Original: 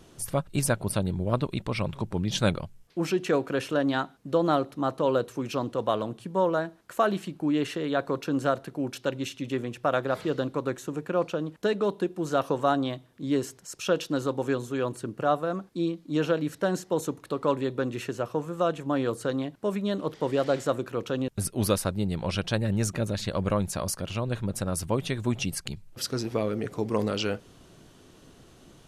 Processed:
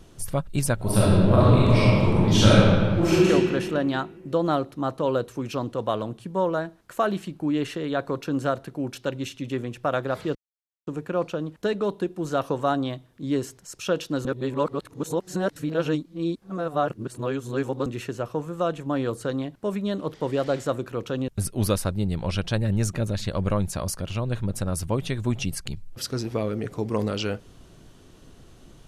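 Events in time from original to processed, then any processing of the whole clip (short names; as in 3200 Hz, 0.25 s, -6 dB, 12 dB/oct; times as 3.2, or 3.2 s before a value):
0.75–3.29 reverb throw, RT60 2 s, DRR -9 dB
10.35–10.87 mute
14.25–17.86 reverse
whole clip: low shelf 78 Hz +12 dB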